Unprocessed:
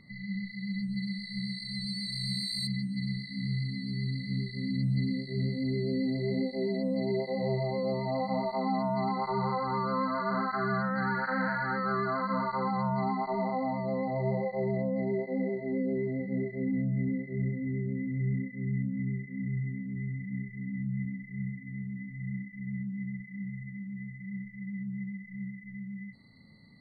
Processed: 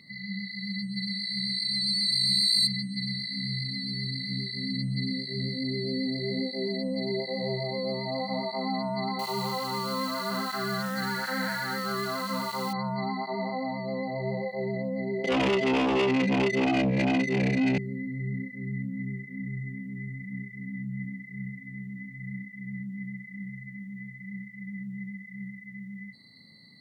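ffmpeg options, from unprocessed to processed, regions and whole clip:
ffmpeg -i in.wav -filter_complex "[0:a]asettb=1/sr,asplit=3[link_01][link_02][link_03];[link_01]atrim=end=9.194[link_04];[link_02]atrim=start=9.19:end=12.73,asetpts=PTS-STARTPTS,afade=type=in:duration=0.004:curve=qsin,afade=type=out:start_time=3.536:duration=0.004:curve=qsin,equalizer=frequency=3600:width=6.1:gain=13.5,acrusher=bits=9:dc=4:mix=0:aa=0.000001[link_05];[link_03]atrim=start=12.726[link_06];[link_04][link_05]acrossfade=duration=0.004:curve1=hsin:curve2=qsin[link_07];[link_07][link_06]acrossfade=duration=0.004:curve1=qsin:curve2=hsin,asettb=1/sr,asplit=3[link_08][link_09][link_10];[link_08]atrim=end=15.244[link_11];[link_09]atrim=start=15.24:end=17.78,asetpts=PTS-STARTPTS,afade=type=in:duration=0.004:curve=qsin,afade=type=out:start_time=2.536:duration=0.004:curve=qsin,highpass=frequency=140:width=0.5412,highpass=frequency=140:width=1.3066,aeval=exprs='0.0944*sin(PI/2*3.16*val(0)/0.0944)':channel_layout=same,adynamicsmooth=sensitivity=5:basefreq=2200[link_12];[link_10]atrim=start=17.776[link_13];[link_11][link_12]acrossfade=duration=0.004:curve1=hsin:curve2=qsin[link_14];[link_14][link_13]acrossfade=duration=0.004:curve1=qsin:curve2=hsin,highpass=130,highshelf=frequency=2000:width_type=q:width=1.5:gain=10" out.wav

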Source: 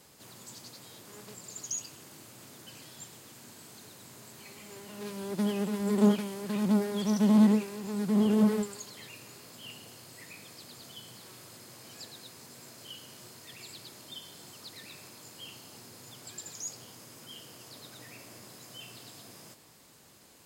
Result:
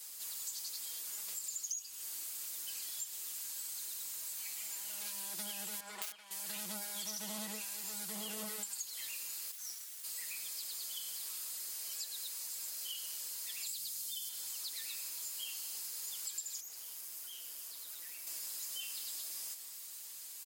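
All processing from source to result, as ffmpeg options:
ffmpeg -i in.wav -filter_complex "[0:a]asettb=1/sr,asplit=3[link_01][link_02][link_03];[link_01]atrim=end=5.804[link_04];[link_02]atrim=start=5.8:end=6.31,asetpts=PTS-STARTPTS,afade=type=in:duration=0.004:curve=qsin,afade=type=out:start_time=0.506:duration=0.004:curve=qsin,bandpass=frequency=1200:width_type=q:width=0.82,aeval=exprs='(mod(22.4*val(0)+1,2)-1)/22.4':channel_layout=same[link_05];[link_03]atrim=start=6.306[link_06];[link_04][link_05]acrossfade=duration=0.004:curve1=hsin:curve2=qsin[link_07];[link_07][link_06]acrossfade=duration=0.004:curve1=qsin:curve2=hsin,asettb=1/sr,asplit=3[link_08][link_09][link_10];[link_08]atrim=end=9.514[link_11];[link_09]atrim=start=9.51:end=10.04,asetpts=PTS-STARTPTS,afade=type=in:duration=0.004:curve=qsin,afade=type=out:start_time=0.526:duration=0.004:curve=qsin,highpass=frequency=1300:width=0.5412,highpass=frequency=1300:width=1.3066,highshelf=frequency=9300:gain=-11.5,aeval=exprs='abs(val(0))':channel_layout=same[link_12];[link_10]atrim=start=10.036[link_13];[link_11][link_12]acrossfade=duration=0.004:curve1=hsin:curve2=qsin[link_14];[link_14][link_13]acrossfade=duration=0.004:curve1=qsin:curve2=hsin,asettb=1/sr,asplit=3[link_15][link_16][link_17];[link_15]atrim=end=13.664[link_18];[link_16]atrim=start=13.66:end=14.29,asetpts=PTS-STARTPTS,afade=type=in:duration=0.004:curve=qsin,afade=type=out:start_time=0.626:duration=0.004:curve=qsin,bass=frequency=250:gain=15,treble=frequency=4000:gain=5,acrossover=split=120|3000[link_19][link_20][link_21];[link_20]acompressor=threshold=-51dB:ratio=3:attack=3.2:release=140:knee=2.83:detection=peak[link_22];[link_19][link_22][link_21]amix=inputs=3:normalize=0[link_23];[link_17]atrim=start=14.286[link_24];[link_18][link_23]acrossfade=duration=0.004:curve1=hsin:curve2=qsin[link_25];[link_25][link_24]acrossfade=duration=0.004:curve1=qsin:curve2=hsin,asettb=1/sr,asplit=3[link_26][link_27][link_28];[link_26]atrim=end=16.604[link_29];[link_27]atrim=start=16.6:end=18.27,asetpts=PTS-STARTPTS,afade=type=in:duration=0.004:curve=qsin,afade=type=out:start_time=1.666:duration=0.004:curve=qsin,acrossover=split=2800[link_30][link_31];[link_31]acompressor=threshold=-53dB:ratio=4:attack=1:release=60[link_32];[link_30][link_32]amix=inputs=2:normalize=0,aeval=exprs='(tanh(355*val(0)+0.75)-tanh(0.75))/355':channel_layout=same,equalizer=frequency=13000:width_type=o:width=0.84:gain=4.5[link_33];[link_28]atrim=start=18.266[link_34];[link_29][link_33]acrossfade=duration=0.004:curve1=hsin:curve2=qsin[link_35];[link_35][link_34]acrossfade=duration=0.004:curve1=qsin:curve2=hsin,aderivative,aecho=1:1:6.2:0.91,acompressor=threshold=-47dB:ratio=6,volume=8.5dB" out.wav

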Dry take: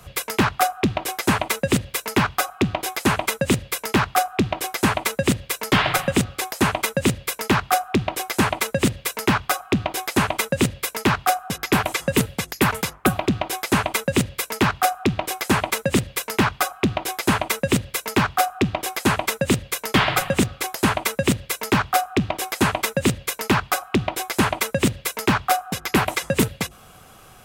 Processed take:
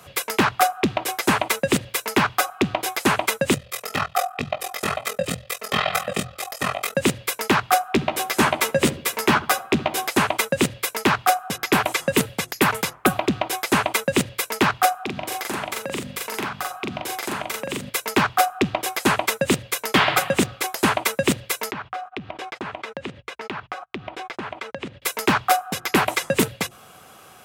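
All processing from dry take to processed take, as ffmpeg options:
ffmpeg -i in.wav -filter_complex "[0:a]asettb=1/sr,asplit=3[link_01][link_02][link_03];[link_01]atrim=end=3.544[link_04];[link_02]atrim=start=3.54:end=6.95,asetpts=PTS-STARTPTS,afade=type=in:duration=0.004:curve=qsin,afade=type=out:start_time=3.406:duration=0.004:curve=qsin,aecho=1:1:1.6:0.74,atrim=end_sample=150381,flanger=delay=17:depth=3.5:speed=2,aeval=exprs='val(0)*sin(2*PI*21*n/s)':channel_layout=same[link_05];[link_03]atrim=start=6.946[link_06];[link_04][link_05]acrossfade=duration=0.004:curve1=hsin:curve2=qsin[link_07];[link_07][link_06]acrossfade=duration=0.004:curve1=qsin:curve2=hsin,asettb=1/sr,asplit=3[link_08][link_09][link_10];[link_08]atrim=end=7.934[link_11];[link_09]atrim=start=7.93:end=10.09,asetpts=PTS-STARTPTS,afade=type=in:duration=0.004:curve=qsin,afade=type=out:start_time=2.156:duration=0.004:curve=qsin,asplit=2[link_12][link_13];[link_13]adelay=13,volume=-5.5dB[link_14];[link_12][link_14]amix=inputs=2:normalize=0,atrim=end_sample=95256,asplit=2[link_15][link_16];[link_16]adelay=70,lowpass=frequency=1000:poles=1,volume=-15dB,asplit=2[link_17][link_18];[link_18]adelay=70,lowpass=frequency=1000:poles=1,volume=0.49,asplit=2[link_19][link_20];[link_20]adelay=70,lowpass=frequency=1000:poles=1,volume=0.49,asplit=2[link_21][link_22];[link_22]adelay=70,lowpass=frequency=1000:poles=1,volume=0.49,asplit=2[link_23][link_24];[link_24]adelay=70,lowpass=frequency=1000:poles=1,volume=0.49[link_25];[link_15][link_17][link_19][link_21][link_23][link_25]amix=inputs=6:normalize=0,atrim=end_sample=95256[link_26];[link_10]atrim=start=10.086[link_27];[link_11][link_26]acrossfade=duration=0.004:curve1=hsin:curve2=qsin[link_28];[link_28][link_27]acrossfade=duration=0.004:curve1=qsin:curve2=hsin,asettb=1/sr,asplit=3[link_29][link_30][link_31];[link_29]atrim=end=15.034[link_32];[link_30]atrim=start=15.03:end=17.9,asetpts=PTS-STARTPTS,afade=type=in:duration=0.004:curve=qsin,afade=type=out:start_time=2.866:duration=0.004:curve=qsin,bandreject=frequency=50:width_type=h:width=6,bandreject=frequency=100:width_type=h:width=6,bandreject=frequency=150:width_type=h:width=6,bandreject=frequency=200:width_type=h:width=6,bandreject=frequency=250:width_type=h:width=6,acompressor=threshold=-27dB:ratio=4:attack=3.2:release=140:knee=1:detection=peak,asplit=2[link_33][link_34];[link_34]adelay=41,volume=-2dB[link_35];[link_33][link_35]amix=inputs=2:normalize=0,atrim=end_sample=126567[link_36];[link_31]atrim=start=17.896[link_37];[link_32][link_36]acrossfade=duration=0.004:curve1=hsin:curve2=qsin[link_38];[link_38][link_37]acrossfade=duration=0.004:curve1=qsin:curve2=hsin,asettb=1/sr,asplit=3[link_39][link_40][link_41];[link_39]atrim=end=21.714[link_42];[link_40]atrim=start=21.71:end=25.02,asetpts=PTS-STARTPTS,afade=type=in:duration=0.004:curve=qsin,afade=type=out:start_time=3.306:duration=0.004:curve=qsin,lowpass=3200,agate=range=-41dB:threshold=-36dB:ratio=16:release=100:detection=peak,acompressor=threshold=-30dB:ratio=4:attack=3.2:release=140:knee=1:detection=peak[link_43];[link_41]atrim=start=25.016[link_44];[link_42][link_43]acrossfade=duration=0.004:curve1=hsin:curve2=qsin[link_45];[link_45][link_44]acrossfade=duration=0.004:curve1=qsin:curve2=hsin,highpass=95,bass=frequency=250:gain=-5,treble=frequency=4000:gain=-1,bandreject=frequency=60:width_type=h:width=6,bandreject=frequency=120:width_type=h:width=6,volume=1.5dB" out.wav

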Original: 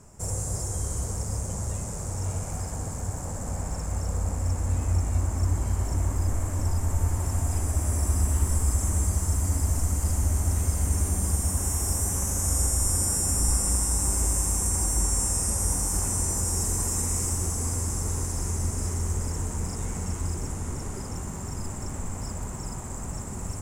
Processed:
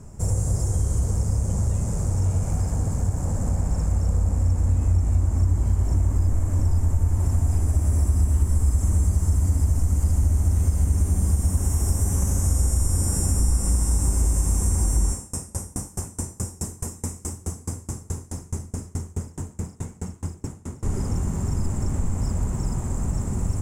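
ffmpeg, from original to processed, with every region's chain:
ffmpeg -i in.wav -filter_complex "[0:a]asettb=1/sr,asplit=3[link_01][link_02][link_03];[link_01]atrim=end=15.124[link_04];[link_02]atrim=start=15.12:end=20.83,asetpts=PTS-STARTPTS,afade=type=in:duration=0.004:curve=qsin,afade=type=out:start_time=5.706:duration=0.004:curve=qsin,highpass=110,aeval=exprs='val(0)*pow(10,-29*if(lt(mod(4.7*n/s,1),2*abs(4.7)/1000),1-mod(4.7*n/s,1)/(2*abs(4.7)/1000),(mod(4.7*n/s,1)-2*abs(4.7)/1000)/(1-2*abs(4.7)/1000))/20)':channel_layout=same[link_05];[link_03]atrim=start=20.826[link_06];[link_04][link_05]acrossfade=duration=0.004:curve1=hsin:curve2=qsin[link_07];[link_07][link_06]acrossfade=duration=0.004:curve1=qsin:curve2=hsin,lowshelf=frequency=400:gain=11.5,acompressor=threshold=-19dB:ratio=2.5" out.wav

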